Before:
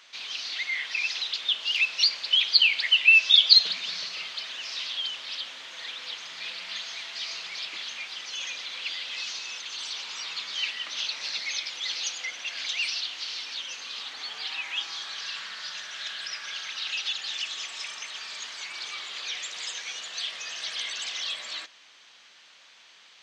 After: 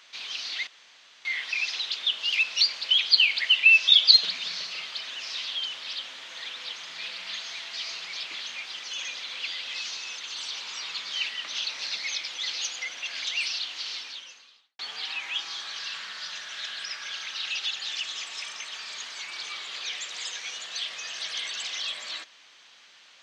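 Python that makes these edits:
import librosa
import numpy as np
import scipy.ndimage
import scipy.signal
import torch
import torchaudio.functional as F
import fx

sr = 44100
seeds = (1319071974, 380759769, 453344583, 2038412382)

y = fx.edit(x, sr, fx.insert_room_tone(at_s=0.67, length_s=0.58),
    fx.fade_out_span(start_s=13.37, length_s=0.84, curve='qua'), tone=tone)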